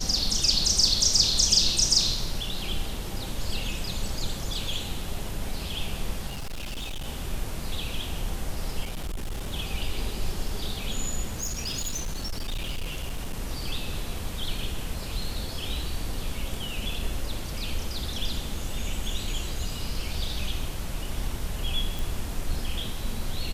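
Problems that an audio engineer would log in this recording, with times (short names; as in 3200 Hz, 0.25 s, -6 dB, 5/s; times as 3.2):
6.28–7.08 clipped -30 dBFS
8.84–9.52 clipped -28 dBFS
11.27–13.4 clipped -26.5 dBFS
21.99 pop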